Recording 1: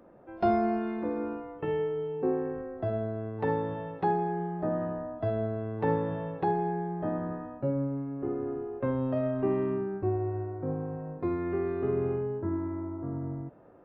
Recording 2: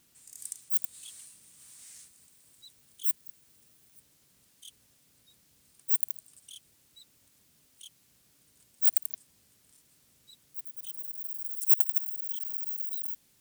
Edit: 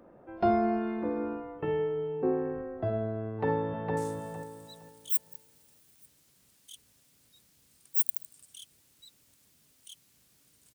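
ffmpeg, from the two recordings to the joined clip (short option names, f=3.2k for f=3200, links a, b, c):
-filter_complex "[0:a]apad=whole_dur=10.74,atrim=end=10.74,atrim=end=3.972[a];[1:a]atrim=start=1.908:end=8.68[b];[a][b]acrossfade=d=0.004:c1=hsin:c2=hsin,asplit=2[c][d];[d]afade=t=in:st=3.27:d=0.01,afade=t=out:st=3.97:d=0.01,aecho=0:1:460|920|1380|1840:0.707946|0.176986|0.0442466|0.0110617[e];[c][e]amix=inputs=2:normalize=0"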